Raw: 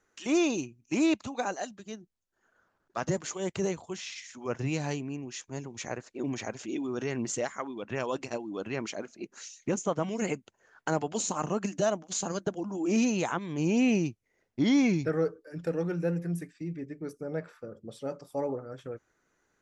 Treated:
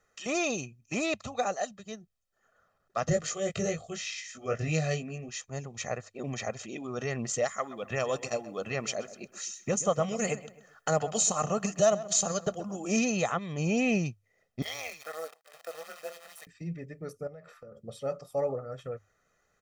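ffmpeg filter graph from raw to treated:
ffmpeg -i in.wav -filter_complex "[0:a]asettb=1/sr,asplit=3[link_01][link_02][link_03];[link_01]atrim=end=3.094[link_04];[link_02]atrim=start=3.09:end=5.29,asetpts=PTS-STARTPTS,afade=type=in:duration=0.004:curve=qsin,afade=type=out:start_time=2.196:duration=0.004:curve=qsin,asuperstop=centerf=940:order=4:qfactor=2.4,asplit=2[link_05][link_06];[link_06]adelay=19,volume=-3.5dB[link_07];[link_05][link_07]amix=inputs=2:normalize=0,atrim=end_sample=97020[link_08];[link_03]atrim=start=5.286[link_09];[link_04][link_08]acrossfade=duration=0.004:curve1=hsin:curve2=qsin[link_10];[link_10][link_09]acrossfade=duration=0.004:curve1=qsin:curve2=hsin,asettb=1/sr,asplit=3[link_11][link_12][link_13];[link_11]atrim=end=7.454[link_14];[link_12]atrim=start=7.45:end=12.99,asetpts=PTS-STARTPTS,afade=type=in:duration=0.004:curve=qsin,afade=type=out:start_time=5.536:duration=0.004:curve=qsin,highshelf=frequency=6600:gain=11,asplit=2[link_15][link_16];[link_16]adelay=129,lowpass=frequency=3000:poles=1,volume=-15dB,asplit=2[link_17][link_18];[link_18]adelay=129,lowpass=frequency=3000:poles=1,volume=0.37,asplit=2[link_19][link_20];[link_20]adelay=129,lowpass=frequency=3000:poles=1,volume=0.37[link_21];[link_15][link_17][link_19][link_21]amix=inputs=4:normalize=0,atrim=end_sample=244314[link_22];[link_13]atrim=start=12.986[link_23];[link_14][link_22]acrossfade=duration=0.004:curve1=hsin:curve2=qsin[link_24];[link_24][link_23]acrossfade=duration=0.004:curve1=qsin:curve2=hsin,asettb=1/sr,asplit=3[link_25][link_26][link_27];[link_25]atrim=end=14.624[link_28];[link_26]atrim=start=14.62:end=16.47,asetpts=PTS-STARTPTS,afade=type=in:duration=0.004:curve=qsin,afade=type=out:start_time=1.846:duration=0.004:curve=qsin,acrusher=bits=8:dc=4:mix=0:aa=0.000001,highpass=frequency=610:width=0.5412,highpass=frequency=610:width=1.3066,tremolo=f=160:d=0.919[link_29];[link_27]atrim=start=16.466[link_30];[link_28][link_29]acrossfade=duration=0.004:curve1=hsin:curve2=qsin[link_31];[link_31][link_30]acrossfade=duration=0.004:curve1=qsin:curve2=hsin,asettb=1/sr,asplit=3[link_32][link_33][link_34];[link_32]atrim=end=17.274[link_35];[link_33]atrim=start=17.27:end=17.83,asetpts=PTS-STARTPTS,afade=type=in:duration=0.004:curve=qsin,afade=type=out:start_time=0.556:duration=0.004:curve=qsin,acompressor=threshold=-45dB:ratio=12:attack=3.2:release=140:knee=1:detection=peak,asplit=2[link_36][link_37];[link_37]adelay=14,volume=-13.5dB[link_38];[link_36][link_38]amix=inputs=2:normalize=0,atrim=end_sample=24696[link_39];[link_34]atrim=start=17.826[link_40];[link_35][link_39]acrossfade=duration=0.004:curve1=hsin:curve2=qsin[link_41];[link_41][link_40]acrossfade=duration=0.004:curve1=qsin:curve2=hsin,bandreject=frequency=50:width_type=h:width=6,bandreject=frequency=100:width_type=h:width=6,aecho=1:1:1.6:0.7" out.wav

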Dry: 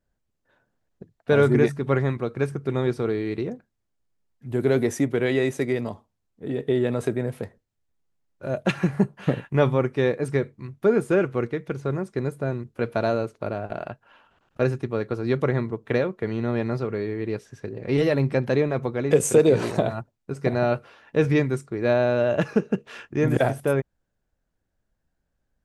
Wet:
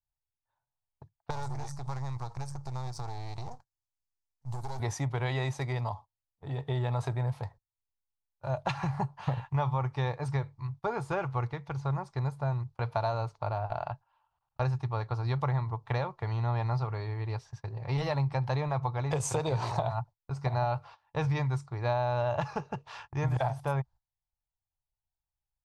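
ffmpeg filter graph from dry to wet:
ffmpeg -i in.wav -filter_complex "[0:a]asettb=1/sr,asplit=3[link_01][link_02][link_03];[link_01]atrim=end=1.304[link_04];[link_02]atrim=start=1.3:end=4.8,asetpts=PTS-STARTPTS,afade=type=in:duration=0.004:curve=qsin,afade=type=out:start_time=3.496:duration=0.004:curve=qsin,aeval=exprs='if(lt(val(0),0),0.251*val(0),val(0))':channel_layout=same,highshelf=frequency=4400:width_type=q:width=1.5:gain=13,acompressor=threshold=-28dB:ratio=6:attack=3.2:release=140:knee=1:detection=peak[link_05];[link_03]atrim=start=4.796[link_06];[link_04][link_05]acrossfade=duration=0.004:curve1=hsin:curve2=qsin[link_07];[link_07][link_06]acrossfade=duration=0.004:curve1=qsin:curve2=hsin,agate=range=-18dB:threshold=-44dB:ratio=16:detection=peak,firequalizer=gain_entry='entry(130,0);entry(200,-22);entry(460,-17);entry(860,6);entry(1500,-10);entry(2900,-9);entry(4500,-2);entry(7600,-11);entry(11000,-17)':delay=0.05:min_phase=1,acompressor=threshold=-28dB:ratio=6,volume=2.5dB" out.wav

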